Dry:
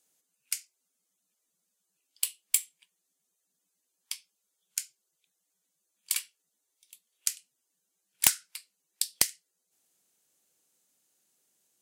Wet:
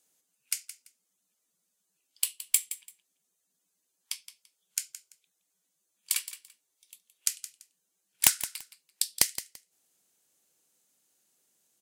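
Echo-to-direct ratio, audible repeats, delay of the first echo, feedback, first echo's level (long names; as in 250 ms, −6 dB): −13.5 dB, 2, 169 ms, 21%, −13.5 dB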